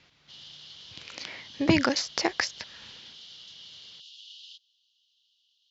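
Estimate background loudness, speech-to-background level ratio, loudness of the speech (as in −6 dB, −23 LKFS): −45.5 LKFS, 17.5 dB, −28.0 LKFS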